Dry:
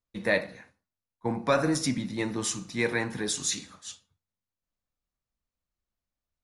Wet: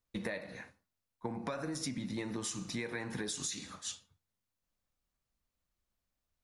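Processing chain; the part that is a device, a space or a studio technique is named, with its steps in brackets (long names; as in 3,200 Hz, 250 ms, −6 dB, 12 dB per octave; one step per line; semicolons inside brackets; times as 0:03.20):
serial compression, peaks first (downward compressor, threshold −32 dBFS, peak gain reduction 12.5 dB; downward compressor 3 to 1, threshold −39 dBFS, peak gain reduction 8 dB)
level +2.5 dB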